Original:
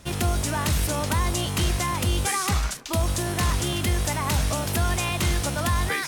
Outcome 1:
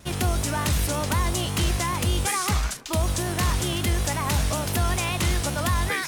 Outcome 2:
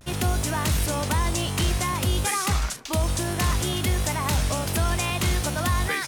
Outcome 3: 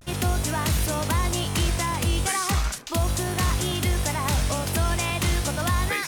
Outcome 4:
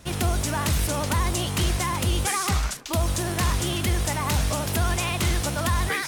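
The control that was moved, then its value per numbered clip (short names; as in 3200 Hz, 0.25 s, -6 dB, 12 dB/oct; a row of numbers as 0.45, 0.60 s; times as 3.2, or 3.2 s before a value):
vibrato, rate: 5.3, 0.59, 0.37, 15 Hz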